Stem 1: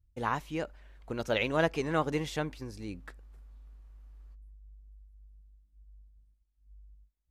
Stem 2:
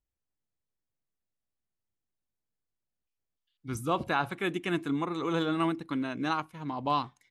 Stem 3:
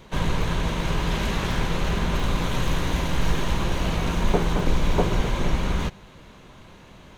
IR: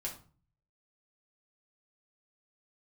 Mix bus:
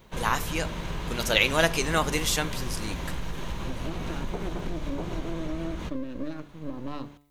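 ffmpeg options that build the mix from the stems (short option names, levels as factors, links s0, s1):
-filter_complex "[0:a]crystalizer=i=8:c=0,volume=0.841,asplit=2[s0][s1];[s1]volume=0.398[s2];[1:a]lowshelf=f=410:t=q:w=3:g=10,aeval=exprs='max(val(0),0)':c=same,volume=0.398,asplit=2[s3][s4];[2:a]volume=0.447[s5];[s4]apad=whole_len=322125[s6];[s0][s6]sidechaincompress=threshold=0.0251:ratio=8:attack=16:release=1110[s7];[s3][s5]amix=inputs=2:normalize=0,bandreject=f=144.3:t=h:w=4,bandreject=f=288.6:t=h:w=4,bandreject=f=432.9:t=h:w=4,bandreject=f=577.2:t=h:w=4,bandreject=f=721.5:t=h:w=4,bandreject=f=865.8:t=h:w=4,bandreject=f=1010.1:t=h:w=4,bandreject=f=1154.4:t=h:w=4,bandreject=f=1298.7:t=h:w=4,bandreject=f=1443:t=h:w=4,bandreject=f=1587.3:t=h:w=4,bandreject=f=1731.6:t=h:w=4,bandreject=f=1875.9:t=h:w=4,bandreject=f=2020.2:t=h:w=4,bandreject=f=2164.5:t=h:w=4,bandreject=f=2308.8:t=h:w=4,bandreject=f=2453.1:t=h:w=4,bandreject=f=2597.4:t=h:w=4,bandreject=f=2741.7:t=h:w=4,bandreject=f=2886:t=h:w=4,bandreject=f=3030.3:t=h:w=4,bandreject=f=3174.6:t=h:w=4,bandreject=f=3318.9:t=h:w=4,bandreject=f=3463.2:t=h:w=4,bandreject=f=3607.5:t=h:w=4,bandreject=f=3751.8:t=h:w=4,bandreject=f=3896.1:t=h:w=4,bandreject=f=4040.4:t=h:w=4,bandreject=f=4184.7:t=h:w=4,bandreject=f=4329:t=h:w=4,bandreject=f=4473.3:t=h:w=4,bandreject=f=4617.6:t=h:w=4,bandreject=f=4761.9:t=h:w=4,bandreject=f=4906.2:t=h:w=4,acompressor=threshold=0.0447:ratio=6,volume=1[s8];[3:a]atrim=start_sample=2205[s9];[s2][s9]afir=irnorm=-1:irlink=0[s10];[s7][s8][s10]amix=inputs=3:normalize=0"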